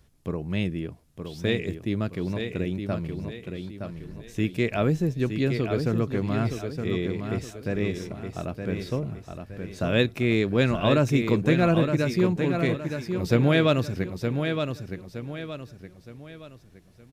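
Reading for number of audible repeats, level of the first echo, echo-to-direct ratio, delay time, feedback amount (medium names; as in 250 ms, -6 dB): 4, -6.5 dB, -6.0 dB, 917 ms, 38%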